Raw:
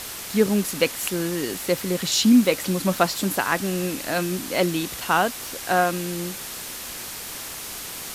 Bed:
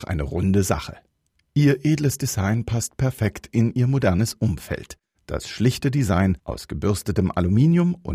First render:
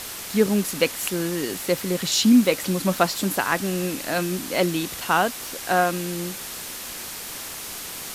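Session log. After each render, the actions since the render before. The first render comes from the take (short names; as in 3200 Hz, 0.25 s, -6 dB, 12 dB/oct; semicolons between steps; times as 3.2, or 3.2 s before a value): de-hum 60 Hz, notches 2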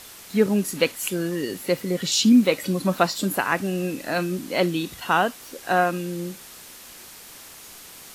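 noise print and reduce 9 dB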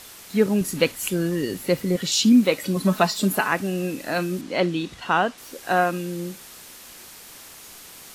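0.61–1.96 low shelf 150 Hz +10.5 dB; 2.76–3.48 comb 4.7 ms; 4.41–5.38 air absorption 68 m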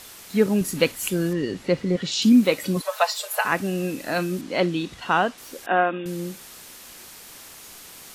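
1.33–2.22 air absorption 97 m; 2.81–3.45 Chebyshev high-pass 470 Hz, order 8; 5.66–6.06 brick-wall FIR band-pass 180–3800 Hz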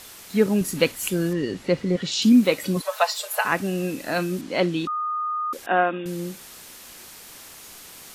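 4.87–5.53 bleep 1230 Hz -23.5 dBFS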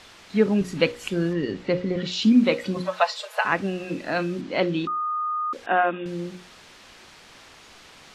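LPF 4100 Hz 12 dB/oct; notches 60/120/180/240/300/360/420/480/540 Hz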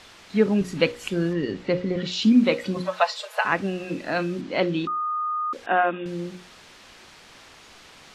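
nothing audible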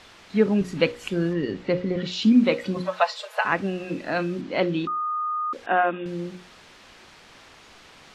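high shelf 4700 Hz -5 dB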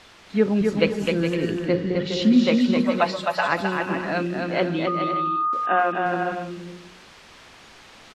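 bouncing-ball echo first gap 0.26 s, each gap 0.6×, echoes 5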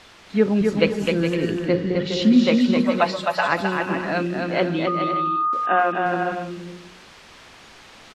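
gain +1.5 dB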